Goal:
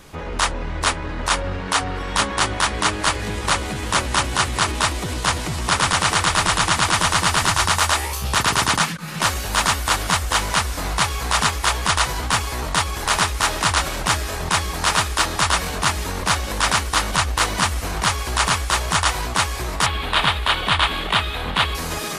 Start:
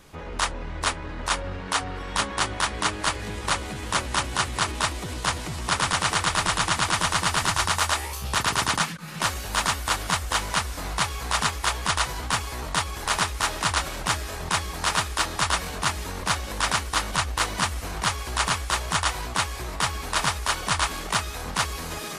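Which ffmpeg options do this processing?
ffmpeg -i in.wav -filter_complex "[0:a]asettb=1/sr,asplit=3[link_01][link_02][link_03];[link_01]atrim=end=19.864[link_04];[link_02]atrim=start=19.86:end=21.75,asetpts=PTS-STARTPTS,afade=type=in:duration=0.004:curve=qsin,afade=type=out:start_time=1.886:duration=0.004:curve=qsin,highshelf=frequency=4500:width_type=q:width=3:gain=-9[link_05];[link_03]atrim=start=21.746[link_06];[link_04][link_05]acrossfade=duration=0.004:curve1=hsin:curve2=qsin[link_07];[link_07][link_06]acrossfade=duration=0.004:curve1=qsin:curve2=hsin,asplit=2[link_08][link_09];[link_09]alimiter=limit=-15.5dB:level=0:latency=1:release=15,volume=1.5dB[link_10];[link_08][link_10]amix=inputs=2:normalize=0" out.wav

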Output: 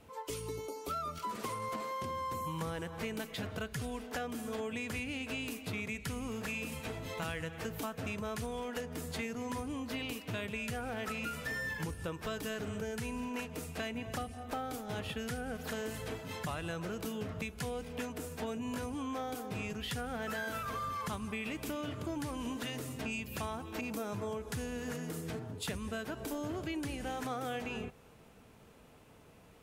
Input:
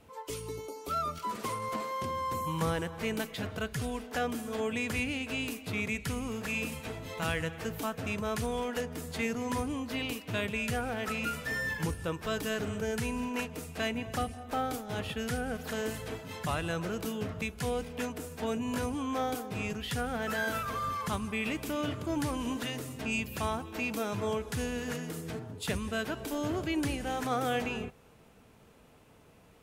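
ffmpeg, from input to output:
ffmpeg -i in.wav -filter_complex "[0:a]asettb=1/sr,asplit=3[link_01][link_02][link_03];[link_01]atrim=end=23.814[link_04];[link_02]atrim=start=23.81:end=26.5,asetpts=PTS-STARTPTS,afade=type=in:duration=0.004:curve=qsin,afade=type=out:start_time=2.686:duration=0.004:curve=qsin,adynamicequalizer=threshold=0.00355:dfrequency=3000:dqfactor=0.9:tfrequency=3000:tqfactor=0.9:attack=5:release=100:ratio=0.375:range=2.5:mode=cutabove:tftype=bell[link_05];[link_03]atrim=start=26.496[link_06];[link_04][link_05]acrossfade=duration=0.004:curve1=hsin:curve2=qsin[link_07];[link_07][link_06]acrossfade=duration=0.004:curve1=qsin:curve2=hsin,acompressor=threshold=-35dB:ratio=6" out.wav

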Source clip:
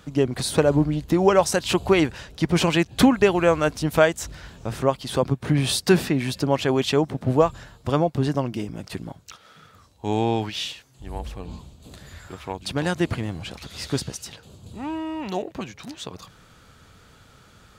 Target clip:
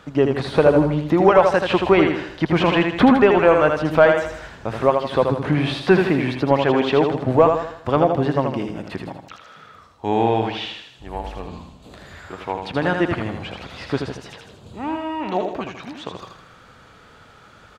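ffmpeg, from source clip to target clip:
ffmpeg -i in.wav -filter_complex "[0:a]aecho=1:1:80|160|240|320|400:0.501|0.216|0.0927|0.0398|0.0171,asplit=2[link_01][link_02];[link_02]highpass=frequency=720:poles=1,volume=11dB,asoftclip=type=tanh:threshold=-3dB[link_03];[link_01][link_03]amix=inputs=2:normalize=0,lowpass=frequency=1400:poles=1,volume=-6dB,acrossover=split=3800[link_04][link_05];[link_05]acompressor=threshold=-52dB:ratio=4:attack=1:release=60[link_06];[link_04][link_06]amix=inputs=2:normalize=0,volume=3dB" out.wav

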